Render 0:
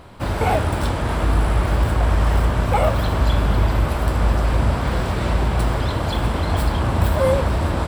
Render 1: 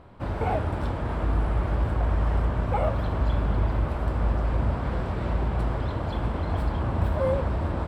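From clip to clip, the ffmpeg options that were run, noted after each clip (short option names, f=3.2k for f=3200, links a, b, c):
-af "lowpass=f=1.4k:p=1,volume=-6.5dB"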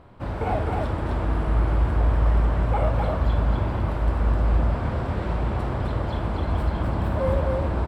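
-af "aecho=1:1:52.48|256.6:0.282|0.708"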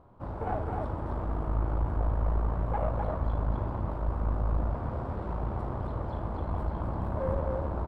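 -af "highshelf=f=1.5k:t=q:w=1.5:g=-9,aeval=exprs='(tanh(5.01*val(0)+0.6)-tanh(0.6))/5.01':c=same,volume=-5dB"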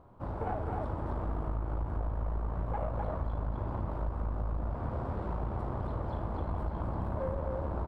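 -af "acompressor=threshold=-29dB:ratio=6"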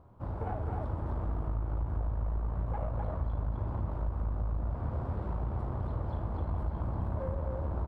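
-af "equalizer=f=83:t=o:w=2:g=6.5,volume=-3.5dB"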